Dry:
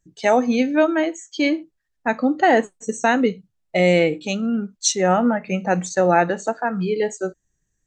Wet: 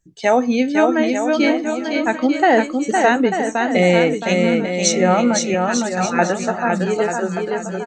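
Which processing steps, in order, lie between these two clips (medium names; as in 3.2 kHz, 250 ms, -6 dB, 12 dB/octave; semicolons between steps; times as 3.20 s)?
5.54–6.19 s: spectral gate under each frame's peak -10 dB weak; bouncing-ball echo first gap 510 ms, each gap 0.75×, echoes 5; trim +1.5 dB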